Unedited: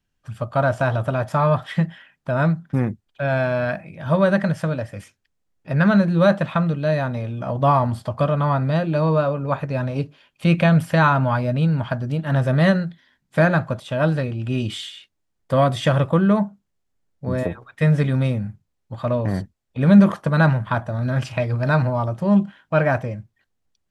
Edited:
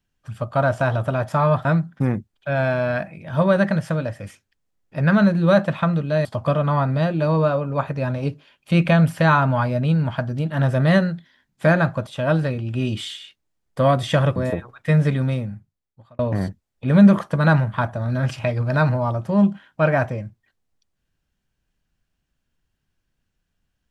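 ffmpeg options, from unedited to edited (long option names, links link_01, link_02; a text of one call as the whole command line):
ffmpeg -i in.wav -filter_complex "[0:a]asplit=5[link_01][link_02][link_03][link_04][link_05];[link_01]atrim=end=1.652[link_06];[link_02]atrim=start=2.378:end=6.982[link_07];[link_03]atrim=start=7.978:end=16.092[link_08];[link_04]atrim=start=17.288:end=19.12,asetpts=PTS-STARTPTS,afade=type=out:start_time=0.692:duration=1.14[link_09];[link_05]atrim=start=19.12,asetpts=PTS-STARTPTS,afade=type=in:duration=0.004:curve=hsin[link_10];[link_06][link_07]acrossfade=duration=0.004:curve1=hsin:curve2=hsin[link_11];[link_11][link_08]acrossfade=duration=0.004:curve1=hsin:curve2=hsin[link_12];[link_09][link_10]concat=n=2:v=0:a=1[link_13];[link_12][link_13]acrossfade=duration=0.004:curve1=hsin:curve2=hsin" out.wav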